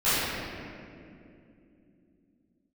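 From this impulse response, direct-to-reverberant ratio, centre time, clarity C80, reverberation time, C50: -17.0 dB, 176 ms, -2.5 dB, 2.7 s, -5.5 dB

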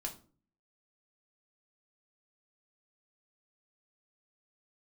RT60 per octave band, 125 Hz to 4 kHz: 0.65 s, 0.60 s, 0.45 s, 0.35 s, 0.30 s, 0.30 s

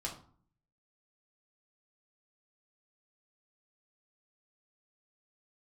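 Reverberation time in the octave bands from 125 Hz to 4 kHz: 0.85 s, 0.70 s, 0.45 s, 0.50 s, 0.35 s, 0.30 s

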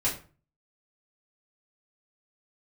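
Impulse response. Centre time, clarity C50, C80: 24 ms, 9.0 dB, 14.0 dB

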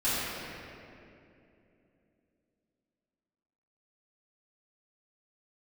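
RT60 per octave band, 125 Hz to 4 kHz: 3.4 s, 3.8 s, 3.3 s, 2.3 s, 2.3 s, 1.7 s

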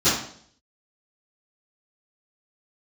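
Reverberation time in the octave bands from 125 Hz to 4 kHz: 0.65 s, 0.65 s, 0.60 s, 0.55 s, 0.50 s, 0.60 s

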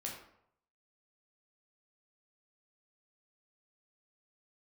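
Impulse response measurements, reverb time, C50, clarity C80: 0.70 s, 4.0 dB, 7.5 dB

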